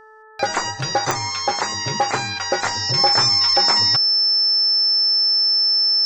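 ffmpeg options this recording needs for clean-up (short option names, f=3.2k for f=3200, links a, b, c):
-af "adeclick=t=4,bandreject=f=435.5:t=h:w=4,bandreject=f=871:t=h:w=4,bandreject=f=1.3065k:t=h:w=4,bandreject=f=1.742k:t=h:w=4,bandreject=f=5.3k:w=30"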